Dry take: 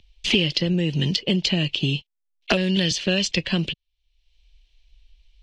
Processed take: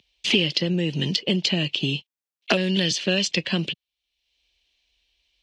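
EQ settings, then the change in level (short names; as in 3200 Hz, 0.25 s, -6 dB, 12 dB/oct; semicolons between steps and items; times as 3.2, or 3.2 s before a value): HPF 160 Hz 12 dB/oct; 0.0 dB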